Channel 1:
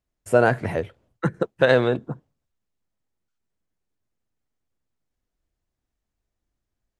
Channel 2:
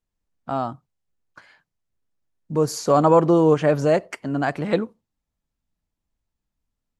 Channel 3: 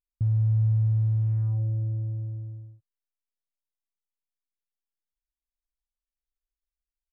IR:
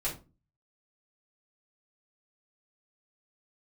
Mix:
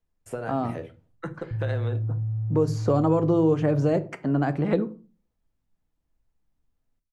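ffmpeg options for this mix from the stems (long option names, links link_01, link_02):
-filter_complex "[0:a]acompressor=threshold=-24dB:ratio=4,volume=-8.5dB,asplit=2[link_01][link_02];[link_02]volume=-10dB[link_03];[1:a]lowpass=frequency=1500:poles=1,volume=1.5dB,asplit=2[link_04][link_05];[link_05]volume=-14dB[link_06];[2:a]acompressor=threshold=-26dB:ratio=2.5,adelay=1300,volume=-6dB,asplit=2[link_07][link_08];[link_08]volume=-8dB[link_09];[3:a]atrim=start_sample=2205[link_10];[link_03][link_06][link_09]amix=inputs=3:normalize=0[link_11];[link_11][link_10]afir=irnorm=-1:irlink=0[link_12];[link_01][link_04][link_07][link_12]amix=inputs=4:normalize=0,acrossover=split=410|2700|5400[link_13][link_14][link_15][link_16];[link_13]acompressor=threshold=-20dB:ratio=4[link_17];[link_14]acompressor=threshold=-29dB:ratio=4[link_18];[link_15]acompressor=threshold=-50dB:ratio=4[link_19];[link_16]acompressor=threshold=-49dB:ratio=4[link_20];[link_17][link_18][link_19][link_20]amix=inputs=4:normalize=0"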